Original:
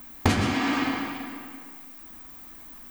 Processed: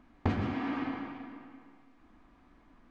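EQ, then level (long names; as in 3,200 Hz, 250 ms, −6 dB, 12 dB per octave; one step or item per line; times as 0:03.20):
head-to-tape spacing loss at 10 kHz 34 dB
−6.5 dB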